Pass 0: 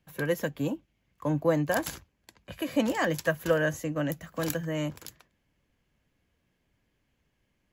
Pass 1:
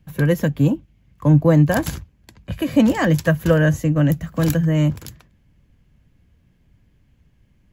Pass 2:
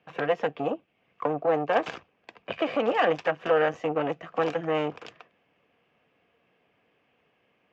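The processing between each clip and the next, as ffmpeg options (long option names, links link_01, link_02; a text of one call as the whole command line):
ffmpeg -i in.wav -af "bass=frequency=250:gain=14,treble=frequency=4000:gain=-1,volume=6dB" out.wav
ffmpeg -i in.wav -af "alimiter=limit=-15dB:level=0:latency=1:release=384,aeval=exprs='(tanh(12.6*val(0)+0.75)-tanh(0.75))/12.6':channel_layout=same,highpass=430,equalizer=frequency=460:width_type=q:width=4:gain=9,equalizer=frequency=720:width_type=q:width=4:gain=9,equalizer=frequency=1200:width_type=q:width=4:gain=7,equalizer=frequency=2600:width_type=q:width=4:gain=7,equalizer=frequency=4200:width_type=q:width=4:gain=-7,lowpass=frequency=4400:width=0.5412,lowpass=frequency=4400:width=1.3066,volume=4.5dB" out.wav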